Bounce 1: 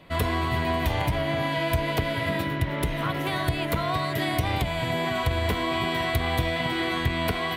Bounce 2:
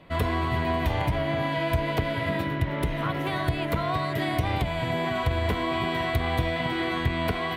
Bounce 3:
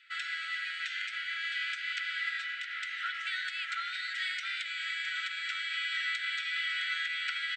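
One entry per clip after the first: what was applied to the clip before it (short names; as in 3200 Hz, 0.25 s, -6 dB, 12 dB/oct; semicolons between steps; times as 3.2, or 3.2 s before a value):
high shelf 3700 Hz -8 dB
brick-wall FIR band-pass 1300–8500 Hz; echo 0.663 s -9.5 dB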